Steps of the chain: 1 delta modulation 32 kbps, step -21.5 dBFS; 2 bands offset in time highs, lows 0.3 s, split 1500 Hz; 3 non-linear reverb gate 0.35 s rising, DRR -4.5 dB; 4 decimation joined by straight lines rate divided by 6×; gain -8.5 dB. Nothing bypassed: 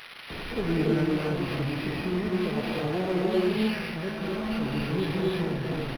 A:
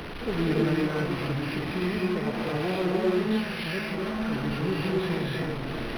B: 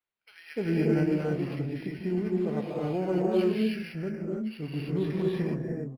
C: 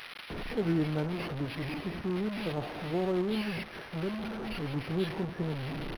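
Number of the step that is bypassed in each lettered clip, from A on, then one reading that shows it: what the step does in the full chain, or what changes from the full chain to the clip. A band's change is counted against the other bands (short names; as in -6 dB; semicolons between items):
2, momentary loudness spread change -1 LU; 1, 4 kHz band -9.0 dB; 3, loudness change -5.5 LU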